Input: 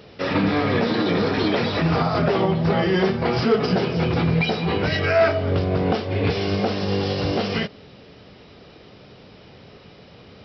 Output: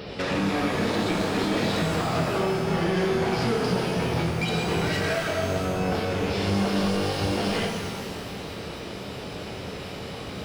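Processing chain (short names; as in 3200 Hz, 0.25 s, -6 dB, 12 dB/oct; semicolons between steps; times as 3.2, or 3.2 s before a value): compressor, threshold -29 dBFS, peak gain reduction 14.5 dB; soft clip -32 dBFS, distortion -11 dB; shimmer reverb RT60 1.9 s, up +12 st, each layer -8 dB, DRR 1 dB; gain +8 dB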